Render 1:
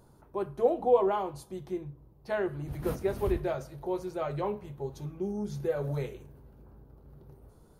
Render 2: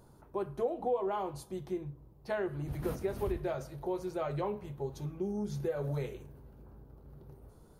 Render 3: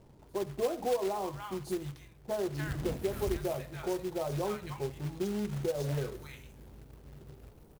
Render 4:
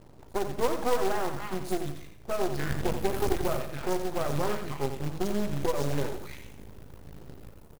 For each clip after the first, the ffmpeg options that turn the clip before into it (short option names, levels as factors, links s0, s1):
-af "acompressor=threshold=0.0282:ratio=3"
-filter_complex "[0:a]acrossover=split=1100[s0][s1];[s1]adelay=290[s2];[s0][s2]amix=inputs=2:normalize=0,acrusher=bits=3:mode=log:mix=0:aa=0.000001,volume=1.19"
-af "aeval=exprs='max(val(0),0)':c=same,aecho=1:1:88|176|264|352:0.355|0.131|0.0486|0.018,volume=2.51"